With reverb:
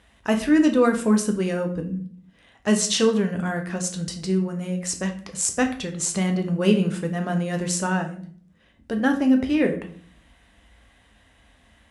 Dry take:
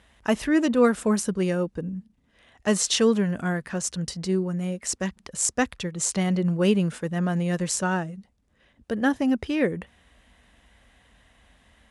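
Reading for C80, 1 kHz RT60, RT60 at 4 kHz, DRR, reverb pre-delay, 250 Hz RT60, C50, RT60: 15.5 dB, 0.40 s, 0.40 s, 4.0 dB, 7 ms, 0.70 s, 11.0 dB, 0.45 s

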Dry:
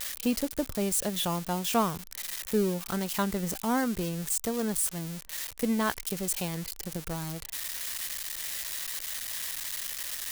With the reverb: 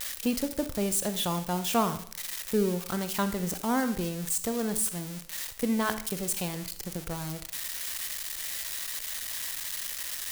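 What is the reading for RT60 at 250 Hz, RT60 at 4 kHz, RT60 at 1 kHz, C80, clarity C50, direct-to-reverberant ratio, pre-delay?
0.55 s, 0.55 s, 0.55 s, 16.0 dB, 12.0 dB, 10.0 dB, 37 ms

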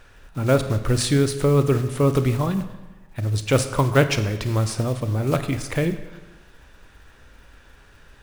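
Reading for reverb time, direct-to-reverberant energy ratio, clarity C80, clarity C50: 1.1 s, 9.0 dB, 12.0 dB, 10.5 dB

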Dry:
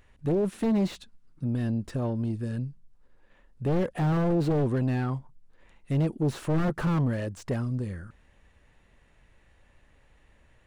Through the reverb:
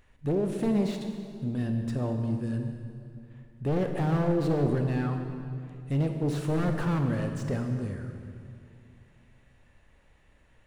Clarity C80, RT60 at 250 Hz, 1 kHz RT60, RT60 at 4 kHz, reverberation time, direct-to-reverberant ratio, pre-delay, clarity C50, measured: 6.5 dB, 2.9 s, 2.2 s, 1.9 s, 2.4 s, 4.5 dB, 20 ms, 5.5 dB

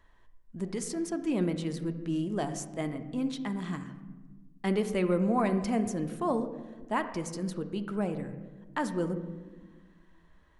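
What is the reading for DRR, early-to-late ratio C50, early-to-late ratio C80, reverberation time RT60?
8.0 dB, 11.0 dB, 12.5 dB, 1.3 s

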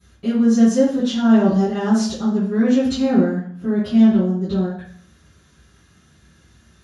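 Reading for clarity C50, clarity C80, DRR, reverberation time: 2.5 dB, 7.5 dB, −19.5 dB, 0.60 s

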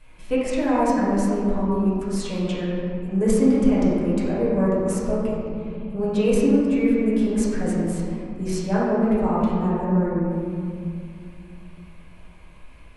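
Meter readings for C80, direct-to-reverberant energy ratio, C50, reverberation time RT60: 0.0 dB, −10.0 dB, −2.5 dB, 2.4 s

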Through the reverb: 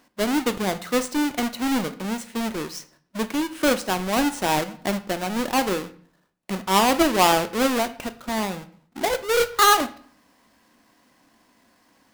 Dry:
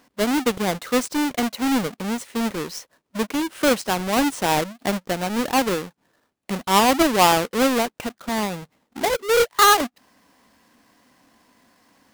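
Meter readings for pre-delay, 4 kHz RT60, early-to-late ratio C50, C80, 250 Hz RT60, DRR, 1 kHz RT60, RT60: 3 ms, 0.45 s, 16.0 dB, 19.5 dB, 0.65 s, 10.0 dB, 0.55 s, 0.55 s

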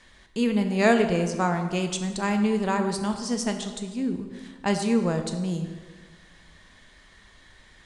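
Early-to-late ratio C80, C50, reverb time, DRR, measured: 9.5 dB, 8.0 dB, 1.5 s, 5.5 dB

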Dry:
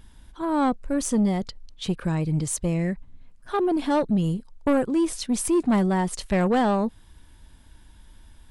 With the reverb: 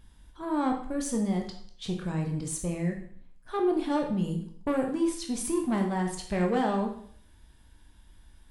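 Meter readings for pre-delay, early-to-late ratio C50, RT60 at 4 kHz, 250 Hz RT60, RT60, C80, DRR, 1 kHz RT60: 9 ms, 7.0 dB, 0.55 s, 0.55 s, 0.55 s, 10.0 dB, 2.0 dB, 0.55 s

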